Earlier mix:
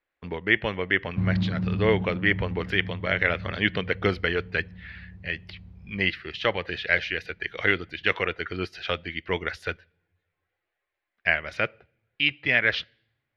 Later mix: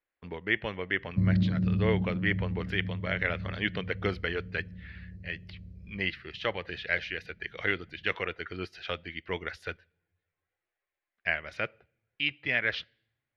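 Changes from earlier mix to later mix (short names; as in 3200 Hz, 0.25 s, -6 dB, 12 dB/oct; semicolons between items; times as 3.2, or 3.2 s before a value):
speech -6.5 dB; background: add brick-wall FIR band-stop 670–3900 Hz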